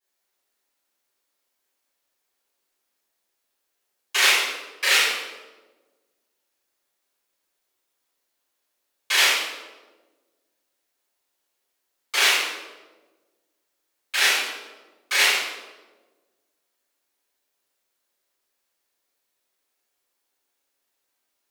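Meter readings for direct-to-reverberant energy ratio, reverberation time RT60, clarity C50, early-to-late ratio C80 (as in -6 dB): -16.5 dB, 1.3 s, -0.5 dB, 3.0 dB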